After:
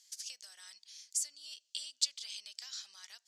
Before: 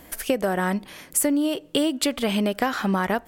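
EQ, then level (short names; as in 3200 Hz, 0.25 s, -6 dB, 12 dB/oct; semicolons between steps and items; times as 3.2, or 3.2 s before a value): Butterworth band-pass 5600 Hz, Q 2; 0.0 dB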